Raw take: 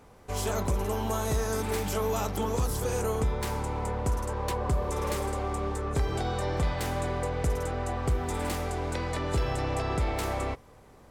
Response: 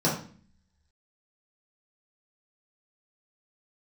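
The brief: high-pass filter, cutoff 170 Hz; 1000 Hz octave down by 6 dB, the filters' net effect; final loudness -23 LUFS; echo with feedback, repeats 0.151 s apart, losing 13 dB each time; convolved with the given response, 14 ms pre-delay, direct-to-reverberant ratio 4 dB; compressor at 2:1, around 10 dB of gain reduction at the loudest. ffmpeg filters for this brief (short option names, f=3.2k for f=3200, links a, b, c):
-filter_complex "[0:a]highpass=170,equalizer=f=1k:t=o:g=-8,acompressor=threshold=-47dB:ratio=2,aecho=1:1:151|302|453:0.224|0.0493|0.0108,asplit=2[a][b];[1:a]atrim=start_sample=2205,adelay=14[c];[b][c]afir=irnorm=-1:irlink=0,volume=-17dB[d];[a][d]amix=inputs=2:normalize=0,volume=16.5dB"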